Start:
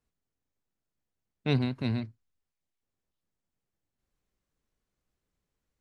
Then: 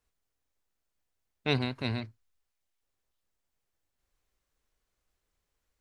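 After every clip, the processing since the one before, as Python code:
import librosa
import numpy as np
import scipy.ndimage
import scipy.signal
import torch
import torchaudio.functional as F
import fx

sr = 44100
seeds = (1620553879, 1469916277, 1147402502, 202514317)

y = fx.peak_eq(x, sr, hz=180.0, db=-10.5, octaves=2.0)
y = F.gain(torch.from_numpy(y), 4.5).numpy()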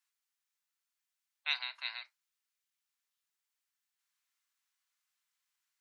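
y = scipy.signal.sosfilt(scipy.signal.bessel(6, 1500.0, 'highpass', norm='mag', fs=sr, output='sos'), x)
y = fx.spec_gate(y, sr, threshold_db=-25, keep='strong')
y = fx.rev_gated(y, sr, seeds[0], gate_ms=80, shape='falling', drr_db=11.5)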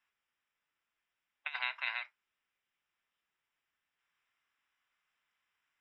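y = fx.over_compress(x, sr, threshold_db=-38.0, ratio=-0.5)
y = fx.mod_noise(y, sr, seeds[1], snr_db=32)
y = scipy.signal.savgol_filter(y, 25, 4, mode='constant')
y = F.gain(torch.from_numpy(y), 6.0).numpy()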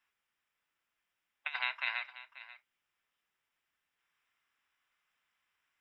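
y = x + 10.0 ** (-16.0 / 20.0) * np.pad(x, (int(537 * sr / 1000.0), 0))[:len(x)]
y = F.gain(torch.from_numpy(y), 1.5).numpy()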